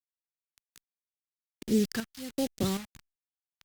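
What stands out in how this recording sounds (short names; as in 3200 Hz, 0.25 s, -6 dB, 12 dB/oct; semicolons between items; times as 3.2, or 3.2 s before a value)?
a quantiser's noise floor 6-bit, dither none; phasing stages 2, 1.3 Hz, lowest notch 420–1100 Hz; chopped level 1.3 Hz, depth 60%, duty 60%; Opus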